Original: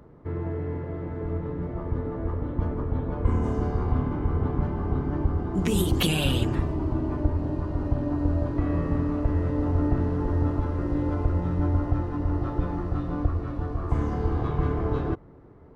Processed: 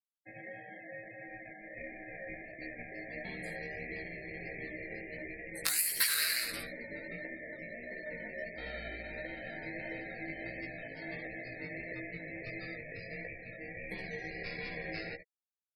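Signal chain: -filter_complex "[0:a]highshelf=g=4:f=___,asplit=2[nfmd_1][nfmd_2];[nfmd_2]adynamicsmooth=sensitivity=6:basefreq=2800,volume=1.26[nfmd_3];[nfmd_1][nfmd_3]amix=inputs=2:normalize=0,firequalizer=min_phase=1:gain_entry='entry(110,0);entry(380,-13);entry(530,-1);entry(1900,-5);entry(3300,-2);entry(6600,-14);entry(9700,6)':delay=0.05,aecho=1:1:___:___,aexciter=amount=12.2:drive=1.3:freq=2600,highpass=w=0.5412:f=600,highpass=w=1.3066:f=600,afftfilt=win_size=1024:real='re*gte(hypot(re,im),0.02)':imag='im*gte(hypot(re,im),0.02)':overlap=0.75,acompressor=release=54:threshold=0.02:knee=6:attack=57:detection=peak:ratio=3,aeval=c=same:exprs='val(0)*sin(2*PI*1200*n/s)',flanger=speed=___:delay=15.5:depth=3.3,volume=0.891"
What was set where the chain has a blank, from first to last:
7600, 71, 0.335, 1.5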